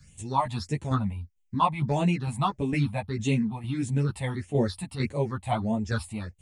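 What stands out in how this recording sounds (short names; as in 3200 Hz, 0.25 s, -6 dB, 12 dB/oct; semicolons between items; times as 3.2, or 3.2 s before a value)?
phasing stages 6, 1.6 Hz, lowest notch 370–1400 Hz; tremolo saw down 2.2 Hz, depth 55%; a shimmering, thickened sound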